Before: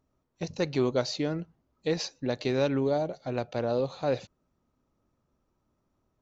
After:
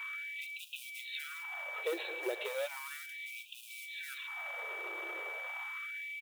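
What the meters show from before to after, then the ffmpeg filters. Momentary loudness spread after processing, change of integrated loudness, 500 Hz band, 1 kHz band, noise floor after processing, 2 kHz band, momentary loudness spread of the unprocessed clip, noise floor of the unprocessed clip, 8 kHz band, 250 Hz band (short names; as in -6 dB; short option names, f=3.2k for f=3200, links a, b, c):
6 LU, -9.5 dB, -13.5 dB, -8.5 dB, -51 dBFS, +5.5 dB, 9 LU, -77 dBFS, n/a, -22.0 dB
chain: -filter_complex "[0:a]aeval=exprs='val(0)+0.5*0.015*sgn(val(0))':c=same,lowshelf=f=110:g=-3.5,aresample=8000,asoftclip=type=hard:threshold=-24.5dB,aresample=44100,aeval=exprs='val(0)+0.01*sin(2*PI*2300*n/s)':c=same,acrusher=bits=6:mode=log:mix=0:aa=0.000001,asplit=2[a][b];[b]aecho=0:1:215:0.0944[c];[a][c]amix=inputs=2:normalize=0,acrossover=split=330|3000[d][e][f];[e]acompressor=threshold=-37dB:ratio=6[g];[d][g][f]amix=inputs=3:normalize=0,afftfilt=real='re*gte(b*sr/1024,310*pow(2400/310,0.5+0.5*sin(2*PI*0.35*pts/sr)))':imag='im*gte(b*sr/1024,310*pow(2400/310,0.5+0.5*sin(2*PI*0.35*pts/sr)))':win_size=1024:overlap=0.75,volume=1dB"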